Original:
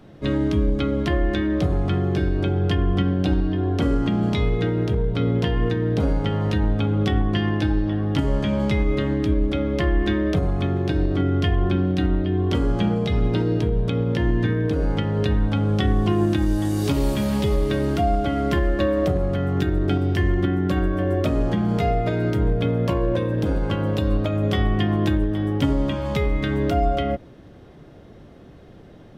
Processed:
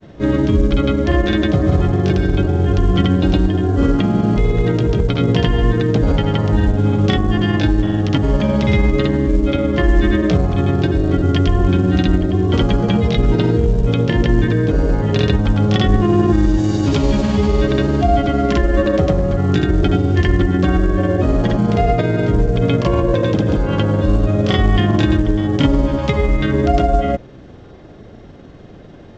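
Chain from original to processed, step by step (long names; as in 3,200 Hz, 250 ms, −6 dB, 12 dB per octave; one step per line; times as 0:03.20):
granular cloud, pitch spread up and down by 0 semitones
level +7.5 dB
mu-law 128 kbit/s 16,000 Hz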